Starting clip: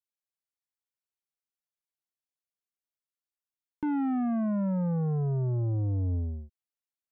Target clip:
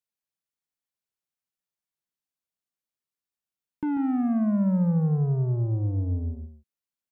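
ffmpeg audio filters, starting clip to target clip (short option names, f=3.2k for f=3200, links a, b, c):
-filter_complex "[0:a]asplit=3[a][b][c];[a]afade=t=out:st=4.07:d=0.02[d];[b]aeval=exprs='val(0)*gte(abs(val(0)),0.00211)':c=same,afade=t=in:st=4.07:d=0.02,afade=t=out:st=5.07:d=0.02[e];[c]afade=t=in:st=5.07:d=0.02[f];[d][e][f]amix=inputs=3:normalize=0,equalizer=f=180:t=o:w=1.1:g=5.5,aecho=1:1:141:0.316"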